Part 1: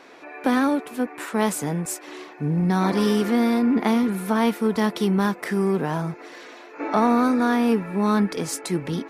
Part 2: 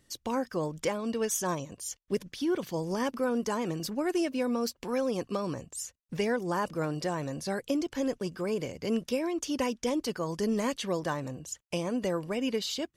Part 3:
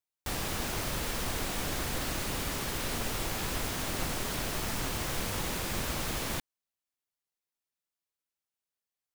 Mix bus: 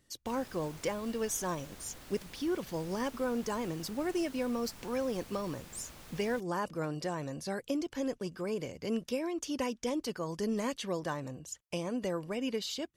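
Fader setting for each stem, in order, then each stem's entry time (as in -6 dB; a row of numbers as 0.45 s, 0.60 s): mute, -4.0 dB, -18.0 dB; mute, 0.00 s, 0.00 s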